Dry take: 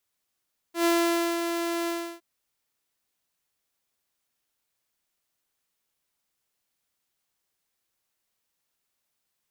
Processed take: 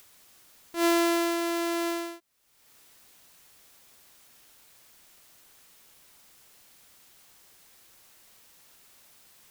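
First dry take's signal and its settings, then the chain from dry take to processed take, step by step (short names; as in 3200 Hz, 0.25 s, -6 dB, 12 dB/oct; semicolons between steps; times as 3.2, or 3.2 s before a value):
ADSR saw 339 Hz, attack 0.11 s, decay 0.524 s, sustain -7 dB, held 1.14 s, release 0.324 s -17 dBFS
upward compressor, threshold -38 dBFS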